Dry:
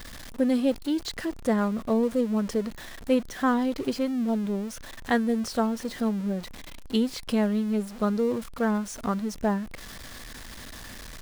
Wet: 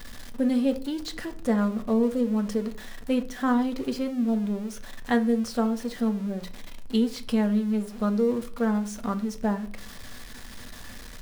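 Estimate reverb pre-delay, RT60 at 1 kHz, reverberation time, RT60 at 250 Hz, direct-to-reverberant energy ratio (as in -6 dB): 4 ms, 0.35 s, 0.45 s, 0.55 s, 7.0 dB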